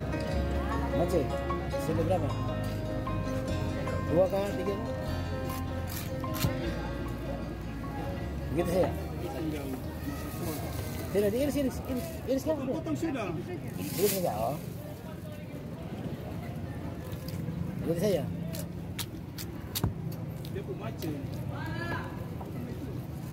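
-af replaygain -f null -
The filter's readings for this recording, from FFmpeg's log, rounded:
track_gain = +13.4 dB
track_peak = 0.147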